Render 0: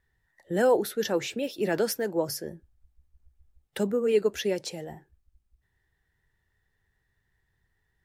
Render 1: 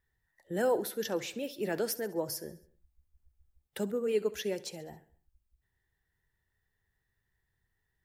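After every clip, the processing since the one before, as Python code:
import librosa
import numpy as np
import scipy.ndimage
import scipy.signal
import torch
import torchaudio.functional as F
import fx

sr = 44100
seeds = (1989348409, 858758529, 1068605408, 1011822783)

y = fx.high_shelf(x, sr, hz=11000.0, db=8.5)
y = fx.echo_feedback(y, sr, ms=68, feedback_pct=53, wet_db=-18.5)
y = F.gain(torch.from_numpy(y), -6.5).numpy()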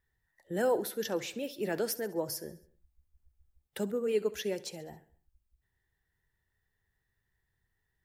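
y = x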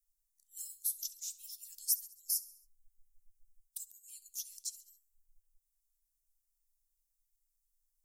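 y = scipy.signal.sosfilt(scipy.signal.cheby2(4, 80, [120.0, 1200.0], 'bandstop', fs=sr, output='sos'), x)
y = F.gain(torch.from_numpy(y), 7.0).numpy()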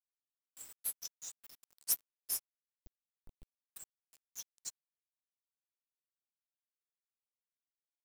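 y = fx.bin_expand(x, sr, power=2.0)
y = fx.quant_companded(y, sr, bits=4)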